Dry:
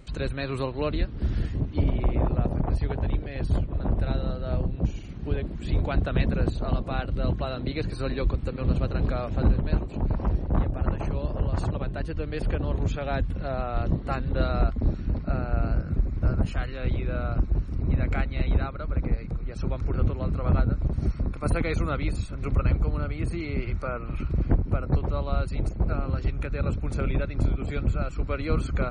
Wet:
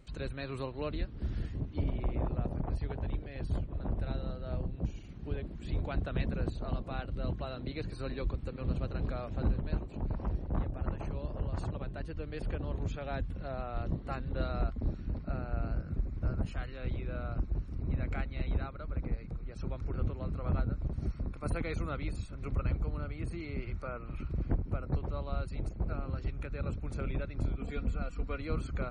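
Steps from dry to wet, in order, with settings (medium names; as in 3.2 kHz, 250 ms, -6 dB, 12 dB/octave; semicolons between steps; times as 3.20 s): 27.60–28.38 s: comb 4.2 ms, depth 56%; trim -9 dB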